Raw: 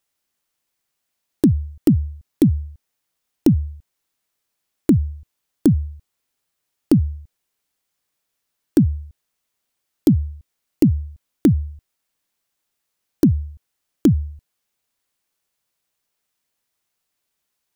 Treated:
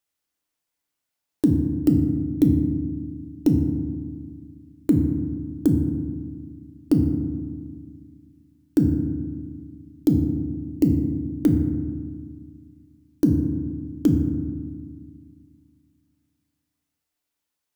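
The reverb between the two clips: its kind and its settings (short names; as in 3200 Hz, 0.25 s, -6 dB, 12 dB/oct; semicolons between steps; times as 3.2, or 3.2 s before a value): FDN reverb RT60 1.7 s, low-frequency decay 1.45×, high-frequency decay 0.4×, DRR 3 dB; gain -6.5 dB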